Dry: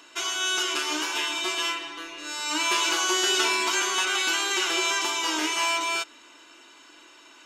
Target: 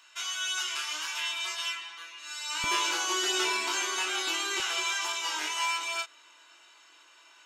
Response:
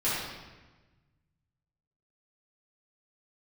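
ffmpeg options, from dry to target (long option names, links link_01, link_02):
-af "flanger=delay=20:depth=3.8:speed=0.36,asetnsamples=nb_out_samples=441:pad=0,asendcmd='2.64 highpass f 220;4.6 highpass f 660',highpass=1100,volume=-2dB"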